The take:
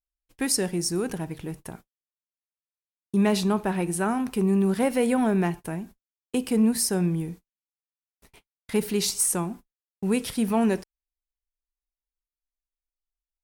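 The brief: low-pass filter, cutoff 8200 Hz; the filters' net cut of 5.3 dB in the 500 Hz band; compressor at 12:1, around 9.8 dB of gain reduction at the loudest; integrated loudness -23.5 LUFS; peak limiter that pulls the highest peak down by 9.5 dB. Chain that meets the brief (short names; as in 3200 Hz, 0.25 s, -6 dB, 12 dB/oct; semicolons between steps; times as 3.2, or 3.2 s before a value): LPF 8200 Hz; bell 500 Hz -7 dB; compressor 12:1, threshold -28 dBFS; gain +14 dB; limiter -14.5 dBFS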